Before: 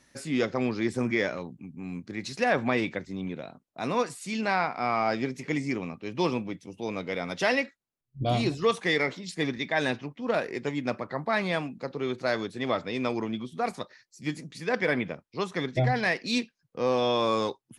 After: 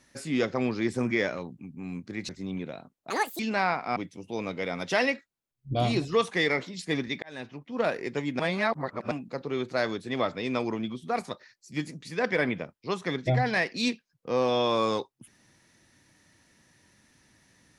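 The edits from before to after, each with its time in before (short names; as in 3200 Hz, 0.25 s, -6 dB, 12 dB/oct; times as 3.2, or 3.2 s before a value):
2.29–2.99 cut
3.8–4.31 speed 174%
4.88–6.46 cut
9.72–10.31 fade in
10.89–11.61 reverse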